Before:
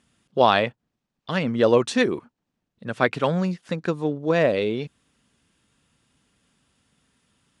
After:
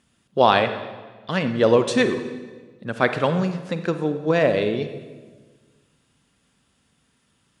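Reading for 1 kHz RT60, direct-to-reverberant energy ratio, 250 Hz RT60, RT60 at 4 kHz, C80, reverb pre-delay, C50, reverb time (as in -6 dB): 1.3 s, 8.5 dB, 1.7 s, 1.1 s, 11.5 dB, 36 ms, 9.5 dB, 1.5 s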